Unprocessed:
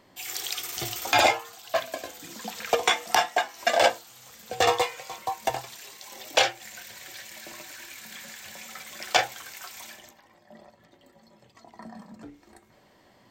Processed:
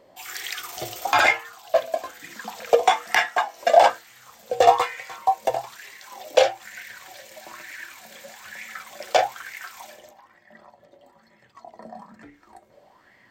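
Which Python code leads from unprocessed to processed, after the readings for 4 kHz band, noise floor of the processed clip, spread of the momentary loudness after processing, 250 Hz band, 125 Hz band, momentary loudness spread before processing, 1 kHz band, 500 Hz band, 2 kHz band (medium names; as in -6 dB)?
-2.5 dB, -58 dBFS, 22 LU, -2.0 dB, no reading, 19 LU, +5.5 dB, +6.5 dB, +3.0 dB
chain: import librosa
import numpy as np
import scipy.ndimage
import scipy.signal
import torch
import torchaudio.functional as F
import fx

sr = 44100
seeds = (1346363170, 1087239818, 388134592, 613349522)

y = fx.bell_lfo(x, sr, hz=1.1, low_hz=520.0, high_hz=2000.0, db=16)
y = y * librosa.db_to_amplitude(-3.5)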